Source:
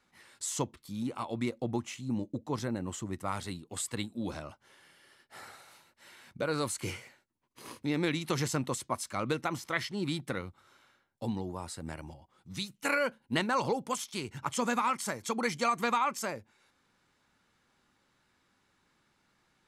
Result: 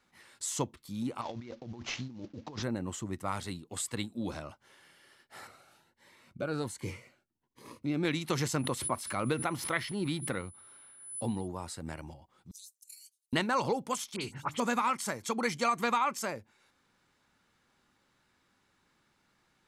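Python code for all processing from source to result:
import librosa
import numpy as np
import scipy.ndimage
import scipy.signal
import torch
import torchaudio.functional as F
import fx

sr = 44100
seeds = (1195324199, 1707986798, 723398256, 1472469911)

y = fx.chain(x, sr, fx.cvsd(bps=32000),
    fx.over_compress(threshold_db=-42.0, ratio=-1.0), at=(1.21, 2.63))
y = fx.chain(y, sr, fx.high_shelf(hz=2400.0, db=-8.5),
    fx.notch_cascade(direction='rising', hz=1.3), at=(5.47, 8.05))
y = fx.peak_eq(y, sr, hz=6900.0, db=-9.0, octaves=0.84, at=(8.58, 11.46), fade=0.02)
y = fx.dmg_tone(y, sr, hz=10000.0, level_db=-53.0, at=(8.58, 11.46), fade=0.02)
y = fx.pre_swell(y, sr, db_per_s=80.0, at=(8.58, 11.46), fade=0.02)
y = fx.chain(y, sr, fx.cheby2_highpass(hz=1400.0, order=4, stop_db=70),
    fx.over_compress(threshold_db=-51.0, ratio=-0.5), at=(12.51, 13.33))
y = fx.chain(y, sr, fx.hum_notches(base_hz=50, count=6),
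    fx.dispersion(late='highs', ms=56.0, hz=2900.0), at=(14.16, 14.6))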